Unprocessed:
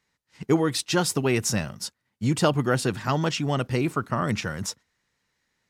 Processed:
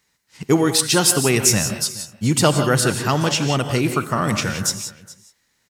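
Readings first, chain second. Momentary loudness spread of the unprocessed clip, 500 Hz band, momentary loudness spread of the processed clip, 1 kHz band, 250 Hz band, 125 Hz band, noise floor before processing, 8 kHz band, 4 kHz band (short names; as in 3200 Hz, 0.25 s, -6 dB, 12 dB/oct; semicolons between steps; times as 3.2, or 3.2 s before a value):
11 LU, +5.5 dB, 9 LU, +5.5 dB, +5.0 dB, +5.5 dB, -78 dBFS, +12.5 dB, +9.5 dB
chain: high shelf 5300 Hz +11 dB; echo 0.422 s -20.5 dB; non-linear reverb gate 0.2 s rising, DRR 7 dB; gain +4.5 dB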